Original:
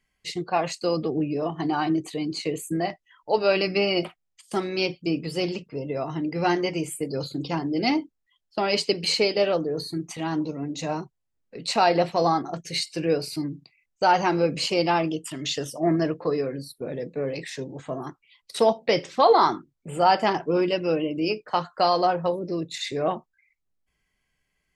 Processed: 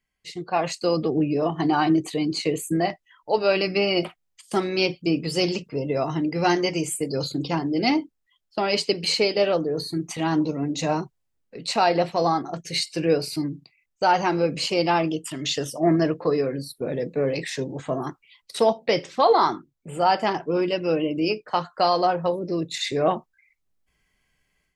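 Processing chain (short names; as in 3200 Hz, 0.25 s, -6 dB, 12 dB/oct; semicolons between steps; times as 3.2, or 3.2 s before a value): AGC gain up to 11.5 dB; 5.2–7.32 dynamic EQ 6400 Hz, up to +7 dB, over -42 dBFS, Q 1.1; gain -6.5 dB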